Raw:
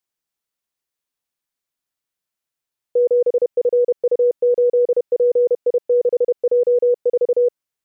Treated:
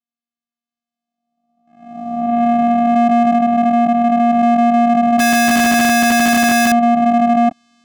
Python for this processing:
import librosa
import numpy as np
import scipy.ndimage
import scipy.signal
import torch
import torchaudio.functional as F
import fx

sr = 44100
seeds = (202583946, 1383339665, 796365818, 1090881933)

y = fx.spec_swells(x, sr, rise_s=1.62)
y = fx.recorder_agc(y, sr, target_db=-13.5, rise_db_per_s=6.6, max_gain_db=30)
y = fx.low_shelf(y, sr, hz=430.0, db=-6.0, at=(3.35, 4.29))
y = fx.leveller(y, sr, passes=3)
y = fx.vocoder(y, sr, bands=4, carrier='square', carrier_hz=236.0)
y = fx.low_shelf(y, sr, hz=180.0, db=3.5)
y = fx.schmitt(y, sr, flips_db=-27.0, at=(5.19, 6.72))
y = fx.sustainer(y, sr, db_per_s=120.0)